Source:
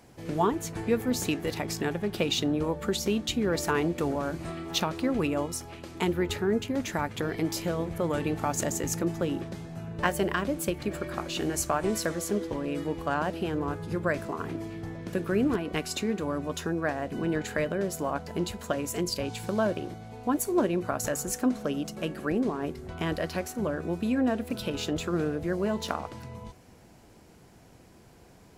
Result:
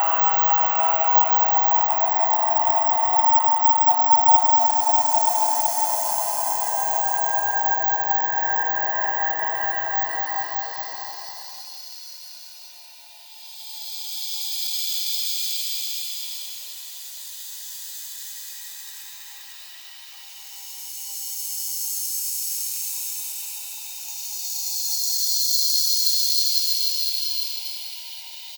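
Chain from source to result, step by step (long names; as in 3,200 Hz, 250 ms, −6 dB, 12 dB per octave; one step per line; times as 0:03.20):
neighbouring bands swapped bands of 500 Hz
Butterworth high-pass 290 Hz 48 dB per octave
transient designer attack −6 dB, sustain +7 dB
in parallel at 0 dB: downward compressor 6 to 1, threshold −40 dBFS, peak gain reduction 16.5 dB
on the sum: auto-filter high-pass square 0.11 Hz 860–4,300 Hz
extreme stretch with random phases 17×, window 0.25 s, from 0:17.59
on a send: multi-tap delay 102/192 ms −12.5/−8 dB
on the sum: bad sample-rate conversion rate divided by 2×, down none, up zero stuff
feedback echo at a low word length 159 ms, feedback 55%, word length 7 bits, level −14 dB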